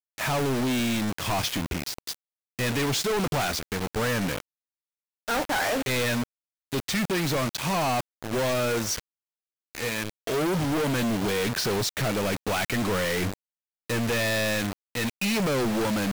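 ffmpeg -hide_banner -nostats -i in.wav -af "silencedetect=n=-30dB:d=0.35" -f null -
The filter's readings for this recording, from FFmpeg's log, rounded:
silence_start: 2.14
silence_end: 2.59 | silence_duration: 0.44
silence_start: 4.40
silence_end: 5.28 | silence_duration: 0.88
silence_start: 6.24
silence_end: 6.72 | silence_duration: 0.48
silence_start: 9.00
silence_end: 9.75 | silence_duration: 0.75
silence_start: 13.34
silence_end: 13.90 | silence_duration: 0.56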